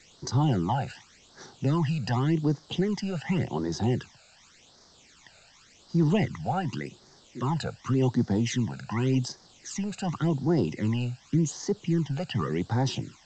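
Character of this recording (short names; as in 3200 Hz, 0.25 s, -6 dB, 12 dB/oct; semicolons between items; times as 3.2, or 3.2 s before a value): a quantiser's noise floor 8-bit, dither triangular; phasing stages 12, 0.88 Hz, lowest notch 320–2700 Hz; G.722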